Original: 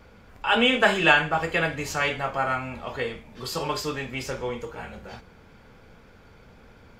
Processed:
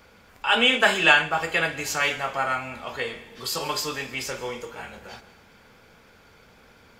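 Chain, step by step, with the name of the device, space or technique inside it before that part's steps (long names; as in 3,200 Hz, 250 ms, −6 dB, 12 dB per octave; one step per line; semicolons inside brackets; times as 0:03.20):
compressed reverb return (on a send at −14 dB: convolution reverb RT60 1.0 s, pre-delay 119 ms + downward compressor, threshold −25 dBFS, peak gain reduction 11.5 dB)
on the sum: spectral tilt +2 dB per octave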